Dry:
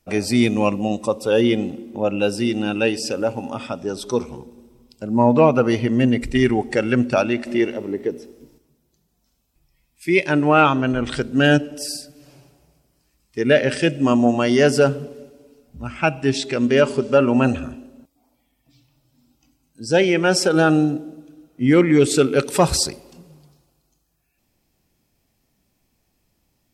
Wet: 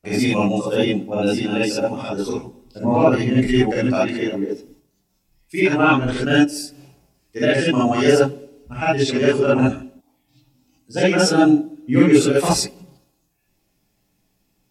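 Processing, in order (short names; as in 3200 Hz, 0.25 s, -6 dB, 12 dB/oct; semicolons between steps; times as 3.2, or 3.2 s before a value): granular stretch 0.55×, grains 73 ms; non-linear reverb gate 90 ms rising, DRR -8 dB; gain -6.5 dB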